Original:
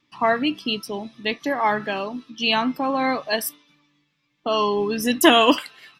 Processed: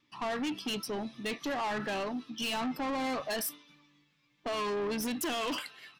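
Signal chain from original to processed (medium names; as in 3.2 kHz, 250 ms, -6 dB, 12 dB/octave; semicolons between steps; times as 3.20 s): level rider gain up to 3.5 dB; peak limiter -12 dBFS, peak gain reduction 10 dB; saturation -26 dBFS, distortion -7 dB; trim -4.5 dB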